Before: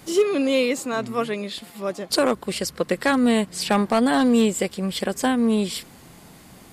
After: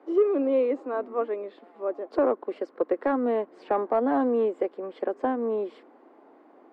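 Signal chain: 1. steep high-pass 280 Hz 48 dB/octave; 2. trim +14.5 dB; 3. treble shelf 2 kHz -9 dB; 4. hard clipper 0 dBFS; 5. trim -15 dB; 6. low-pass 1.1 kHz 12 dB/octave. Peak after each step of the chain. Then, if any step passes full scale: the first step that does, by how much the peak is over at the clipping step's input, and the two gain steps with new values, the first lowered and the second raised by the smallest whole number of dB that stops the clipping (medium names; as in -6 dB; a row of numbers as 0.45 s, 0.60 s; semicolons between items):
-8.0 dBFS, +6.5 dBFS, +4.5 dBFS, 0.0 dBFS, -15.0 dBFS, -14.5 dBFS; step 2, 4.5 dB; step 2 +9.5 dB, step 5 -10 dB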